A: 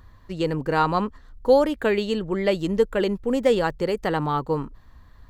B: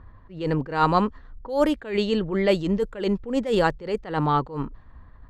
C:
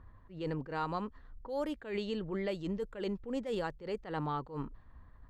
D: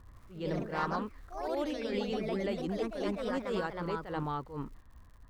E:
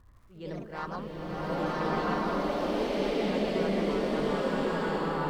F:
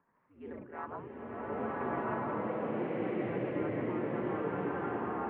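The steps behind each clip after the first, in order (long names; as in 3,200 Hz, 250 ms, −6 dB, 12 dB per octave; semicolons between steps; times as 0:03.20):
low-pass that shuts in the quiet parts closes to 1,600 Hz, open at −15 dBFS; level that may rise only so fast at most 130 dB per second; level +3 dB
downward compressor 5 to 1, threshold −24 dBFS, peak gain reduction 9.5 dB; level −8.5 dB
surface crackle 110 per second −53 dBFS; delay with pitch and tempo change per echo 86 ms, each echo +2 semitones, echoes 3
slow-attack reverb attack 1,360 ms, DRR −9.5 dB; level −4 dB
single-sideband voice off tune −84 Hz 250–2,400 Hz; level −4.5 dB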